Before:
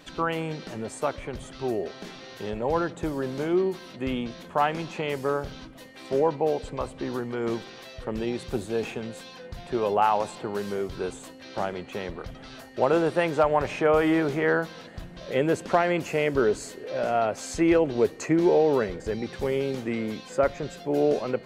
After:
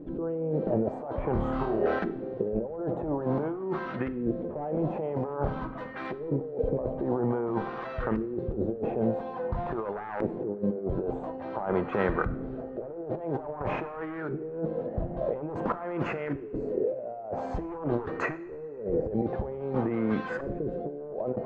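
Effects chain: one-sided fold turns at -19 dBFS; LFO low-pass saw up 0.49 Hz 350–1600 Hz; negative-ratio compressor -32 dBFS, ratio -1; 1.33–1.99 flutter echo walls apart 4.6 m, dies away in 0.54 s; two-slope reverb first 0.6 s, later 3.2 s, from -19 dB, DRR 11.5 dB

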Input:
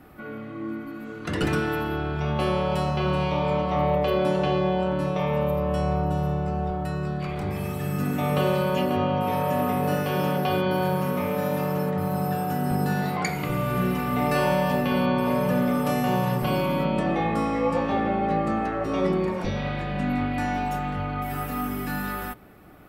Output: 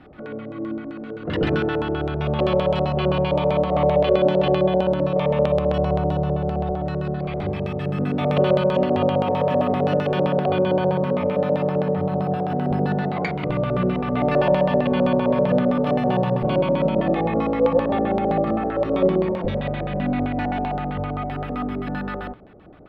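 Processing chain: LFO low-pass square 7.7 Hz 560–3600 Hz; bell 6600 Hz -6 dB 1.9 oct, from 10.21 s -12.5 dB; gain +2 dB

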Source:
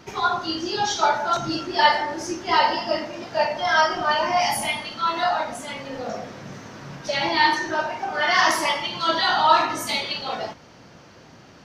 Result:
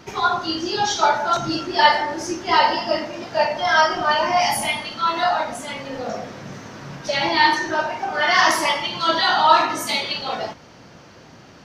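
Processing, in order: 9.22–10.03 HPF 120 Hz; gain +2.5 dB

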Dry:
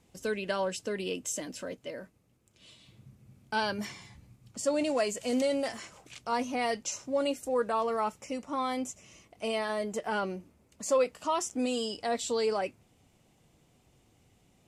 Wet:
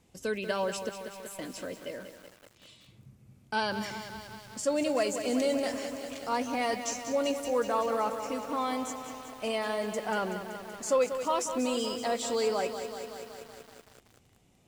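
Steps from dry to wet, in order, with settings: 0.89–1.39 inverse Chebyshev high-pass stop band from 2600 Hz, stop band 70 dB; lo-fi delay 0.189 s, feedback 80%, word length 8-bit, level -9 dB

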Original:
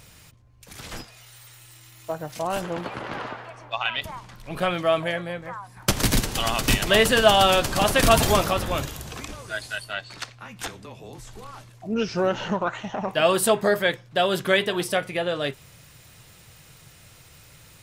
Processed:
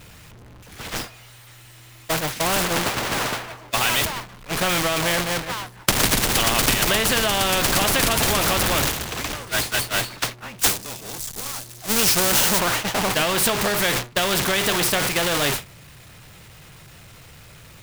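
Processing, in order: zero-crossing step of -21.5 dBFS; gate -24 dBFS, range -34 dB; tone controls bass +2 dB, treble -6 dB, from 10.58 s treble +12 dB, from 12.58 s treble -6 dB; compressor, threshold -18 dBFS, peak gain reduction 8.5 dB; spectral compressor 2:1; gain +7 dB

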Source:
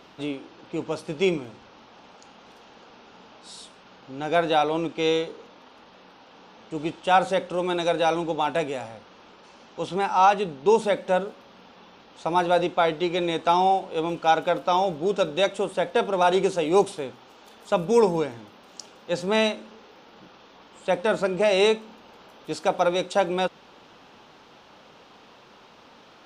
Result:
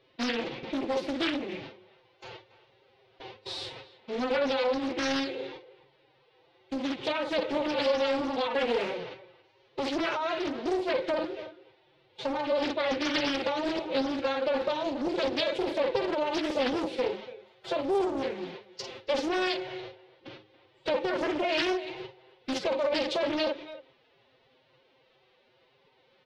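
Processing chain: on a send: early reflections 13 ms -6.5 dB, 50 ms -5 dB; on the sum: gate with hold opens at -36 dBFS; high shelf 9200 Hz -10.5 dB; small resonant body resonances 320/890 Hz, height 10 dB, ringing for 60 ms; compressor 6:1, threshold -26 dBFS, peak gain reduction 16.5 dB; formant-preserving pitch shift +9 st; de-hum 105.2 Hz, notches 5; speakerphone echo 0.28 s, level -16 dB; limiter -24 dBFS, peak gain reduction 7.5 dB; graphic EQ 125/250/500/1000/2000/4000/8000 Hz +9/-4/+9/-7/+9/+9/-8 dB; Doppler distortion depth 0.53 ms

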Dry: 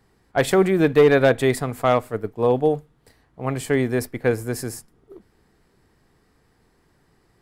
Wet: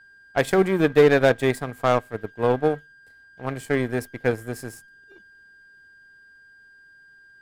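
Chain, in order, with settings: whine 1600 Hz -37 dBFS; power-law curve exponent 1.4

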